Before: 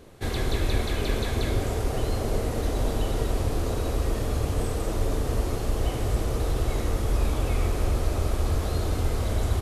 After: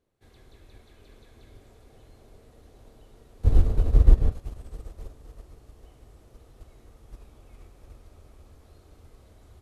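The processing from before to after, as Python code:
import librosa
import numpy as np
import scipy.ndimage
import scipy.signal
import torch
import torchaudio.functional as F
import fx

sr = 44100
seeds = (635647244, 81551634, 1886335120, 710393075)

p1 = fx.riaa(x, sr, side='playback', at=(3.44, 4.32))
p2 = p1 + fx.echo_heads(p1, sr, ms=260, heads='second and third', feedback_pct=62, wet_db=-11, dry=0)
p3 = fx.upward_expand(p2, sr, threshold_db=-21.0, expansion=2.5)
y = p3 * librosa.db_to_amplitude(-3.0)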